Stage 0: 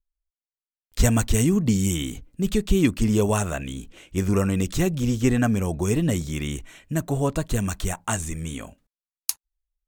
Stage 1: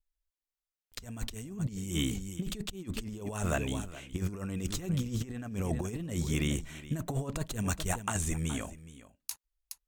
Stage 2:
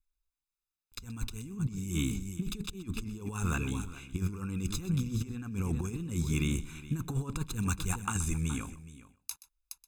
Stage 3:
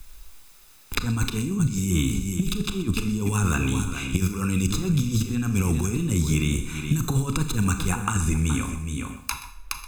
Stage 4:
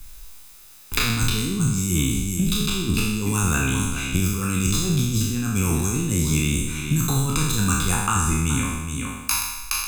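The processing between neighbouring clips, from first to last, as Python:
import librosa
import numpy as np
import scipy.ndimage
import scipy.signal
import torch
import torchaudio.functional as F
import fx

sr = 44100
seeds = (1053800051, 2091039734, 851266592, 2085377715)

y1 = x + 10.0 ** (-17.0 / 20.0) * np.pad(x, (int(419 * sr / 1000.0), 0))[:len(x)]
y1 = fx.over_compress(y1, sr, threshold_db=-26.0, ratio=-0.5)
y1 = y1 * 10.0 ** (-6.5 / 20.0)
y2 = y1 + 0.94 * np.pad(y1, (int(0.8 * sr / 1000.0), 0))[:len(y1)]
y2 = y2 + 10.0 ** (-17.0 / 20.0) * np.pad(y2, (int(126 * sr / 1000.0), 0))[:len(y2)]
y2 = y2 * 10.0 ** (-4.0 / 20.0)
y3 = fx.rev_schroeder(y2, sr, rt60_s=0.45, comb_ms=26, drr_db=8.0)
y3 = fx.band_squash(y3, sr, depth_pct=100)
y3 = y3 * 10.0 ** (8.5 / 20.0)
y4 = fx.spec_trails(y3, sr, decay_s=1.11)
y4 = fx.high_shelf(y4, sr, hz=4800.0, db=5.5)
y4 = y4 * 10.0 ** (-1.0 / 20.0)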